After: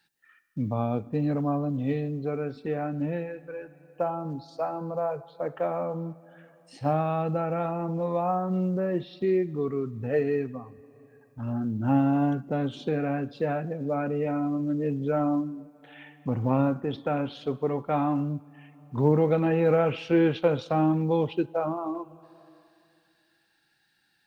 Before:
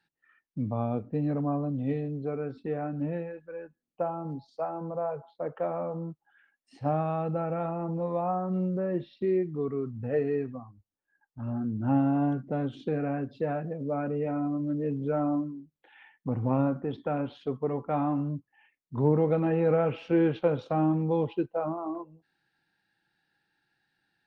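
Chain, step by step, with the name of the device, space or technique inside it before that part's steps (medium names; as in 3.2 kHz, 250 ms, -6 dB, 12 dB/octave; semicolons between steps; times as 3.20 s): compressed reverb return (on a send at -13 dB: reverberation RT60 2.2 s, pre-delay 63 ms + compression, threshold -37 dBFS, peak gain reduction 18 dB); on the sum: treble shelf 2.9 kHz +11.5 dB; trim +2 dB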